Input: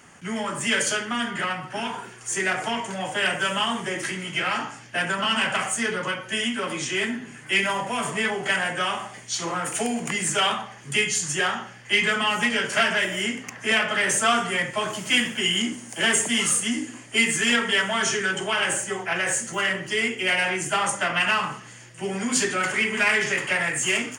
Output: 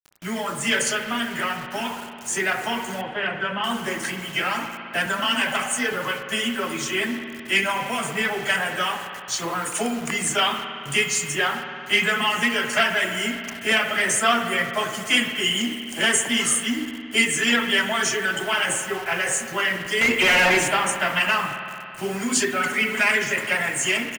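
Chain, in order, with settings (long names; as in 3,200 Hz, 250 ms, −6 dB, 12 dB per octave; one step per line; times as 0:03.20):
reverb reduction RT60 1 s
pitch vibrato 13 Hz 20 cents
0:05.06–0:05.93: frequency shifter +14 Hz
0:20.01–0:20.68: mid-hump overdrive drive 28 dB, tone 2,400 Hz, clips at −11 dBFS
bit reduction 7 bits
0:03.01–0:03.64: high-frequency loss of the air 400 metres
far-end echo of a speakerphone 230 ms, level −25 dB
spring reverb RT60 2.7 s, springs 55 ms, chirp 40 ms, DRR 6.5 dB
level +1.5 dB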